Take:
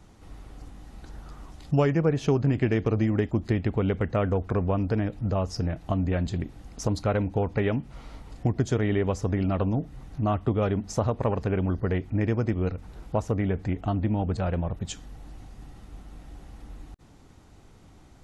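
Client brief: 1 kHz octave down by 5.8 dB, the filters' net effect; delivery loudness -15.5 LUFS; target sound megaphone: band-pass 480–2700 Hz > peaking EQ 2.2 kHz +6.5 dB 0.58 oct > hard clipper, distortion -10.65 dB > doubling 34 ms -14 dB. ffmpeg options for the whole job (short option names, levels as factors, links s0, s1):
-filter_complex "[0:a]highpass=480,lowpass=2700,equalizer=f=1000:t=o:g=-8,equalizer=f=2200:t=o:w=0.58:g=6.5,asoftclip=type=hard:threshold=0.0376,asplit=2[s0][s1];[s1]adelay=34,volume=0.2[s2];[s0][s2]amix=inputs=2:normalize=0,volume=12.6"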